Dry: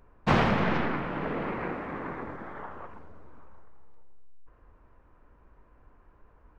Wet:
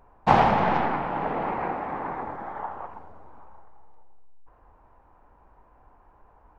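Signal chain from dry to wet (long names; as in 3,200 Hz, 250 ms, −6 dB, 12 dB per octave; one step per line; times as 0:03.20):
parametric band 810 Hz +14 dB 0.69 octaves
level −1 dB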